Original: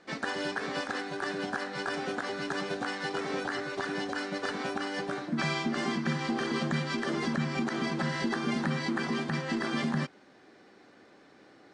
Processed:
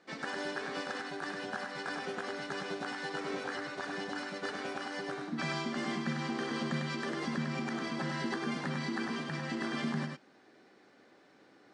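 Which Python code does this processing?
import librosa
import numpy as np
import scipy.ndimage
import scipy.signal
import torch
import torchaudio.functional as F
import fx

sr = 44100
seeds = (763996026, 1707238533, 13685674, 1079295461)

p1 = fx.low_shelf(x, sr, hz=67.0, db=-11.5)
p2 = p1 + fx.echo_single(p1, sr, ms=100, db=-4.5, dry=0)
y = F.gain(torch.from_numpy(p2), -5.5).numpy()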